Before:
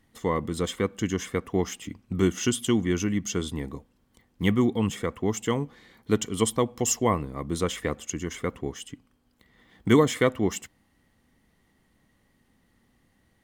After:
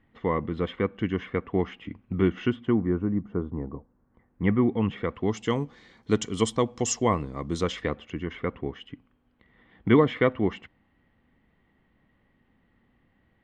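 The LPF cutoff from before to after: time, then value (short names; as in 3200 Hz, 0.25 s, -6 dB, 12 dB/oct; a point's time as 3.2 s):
LPF 24 dB/oct
2.4 s 2800 Hz
2.99 s 1200 Hz
3.66 s 1200 Hz
4.96 s 2900 Hz
5.59 s 7000 Hz
7.57 s 7000 Hz
8.08 s 3000 Hz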